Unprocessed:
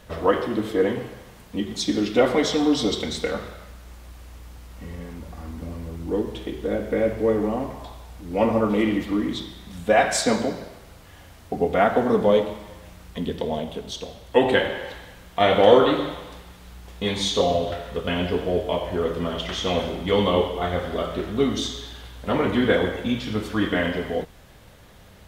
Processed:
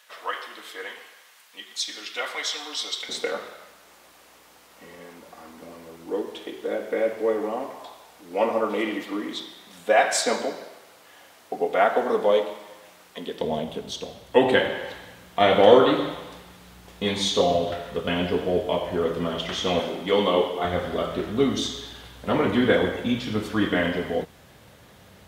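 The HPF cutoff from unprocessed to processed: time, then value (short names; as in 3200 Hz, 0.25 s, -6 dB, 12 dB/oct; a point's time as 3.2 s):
1400 Hz
from 3.09 s 410 Hz
from 13.41 s 110 Hz
from 19.8 s 230 Hz
from 20.65 s 91 Hz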